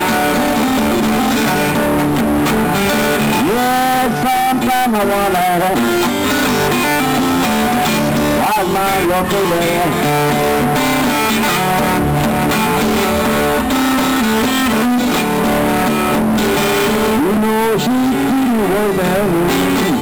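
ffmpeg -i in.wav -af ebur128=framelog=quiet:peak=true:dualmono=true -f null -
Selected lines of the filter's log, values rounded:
Integrated loudness:
  I:         -10.9 LUFS
  Threshold: -20.9 LUFS
Loudness range:
  LRA:         0.2 LU
  Threshold: -30.9 LUFS
  LRA low:   -11.0 LUFS
  LRA high:  -10.8 LUFS
True peak:
  Peak:      -10.0 dBFS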